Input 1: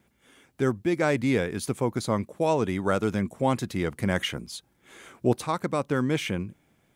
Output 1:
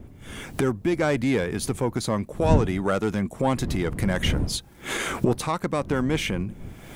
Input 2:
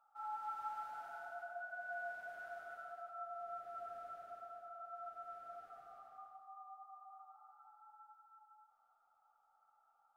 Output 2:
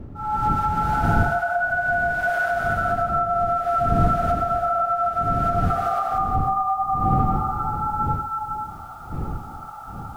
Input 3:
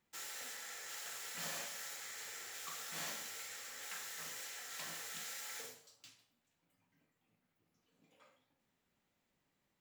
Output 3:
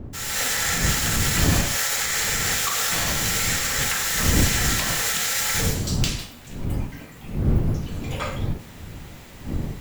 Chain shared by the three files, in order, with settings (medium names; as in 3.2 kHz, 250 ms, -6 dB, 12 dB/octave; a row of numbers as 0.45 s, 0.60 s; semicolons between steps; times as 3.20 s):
single-diode clipper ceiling -13.5 dBFS; recorder AGC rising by 40 dB/s; wind noise 150 Hz -34 dBFS; peak normalisation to -6 dBFS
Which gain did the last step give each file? +2.5 dB, +6.0 dB, +7.0 dB